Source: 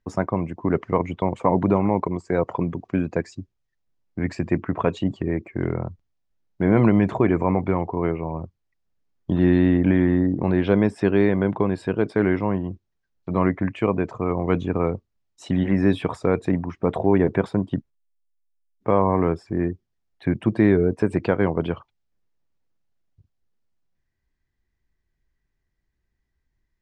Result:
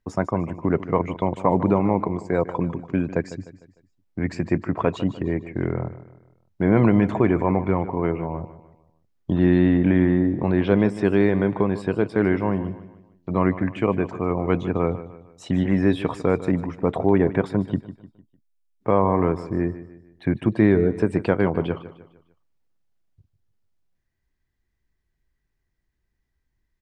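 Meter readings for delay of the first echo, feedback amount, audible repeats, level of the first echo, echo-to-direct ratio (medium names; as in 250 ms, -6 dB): 151 ms, 41%, 3, -14.5 dB, -13.5 dB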